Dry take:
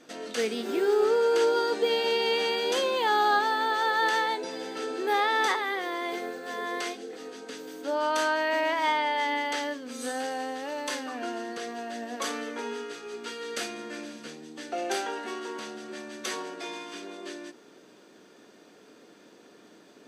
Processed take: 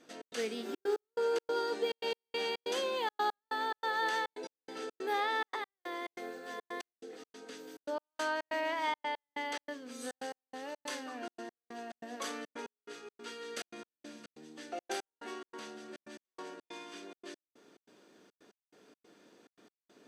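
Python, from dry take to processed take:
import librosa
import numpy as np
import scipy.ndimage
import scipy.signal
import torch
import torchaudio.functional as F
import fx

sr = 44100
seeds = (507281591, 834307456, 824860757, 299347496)

y = fx.step_gate(x, sr, bpm=141, pattern='xx.xxxx.x..', floor_db=-60.0, edge_ms=4.5)
y = y * 10.0 ** (-7.5 / 20.0)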